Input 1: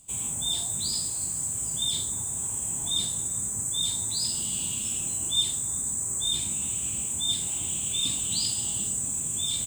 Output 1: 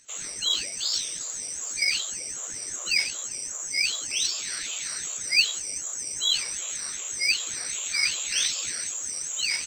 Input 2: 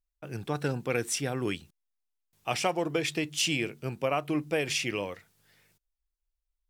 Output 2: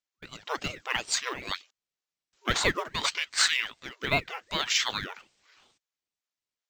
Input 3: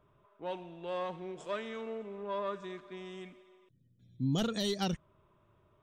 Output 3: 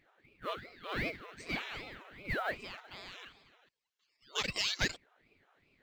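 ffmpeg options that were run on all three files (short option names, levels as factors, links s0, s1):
-af "afftfilt=real='re*between(b*sr/4096,670,7400)':imag='im*between(b*sr/4096,670,7400)':win_size=4096:overlap=0.75,acrusher=bits=7:mode=log:mix=0:aa=0.000001,aeval=exprs='val(0)*sin(2*PI*840*n/s+840*0.7/2.6*sin(2*PI*2.6*n/s))':c=same,volume=2.51"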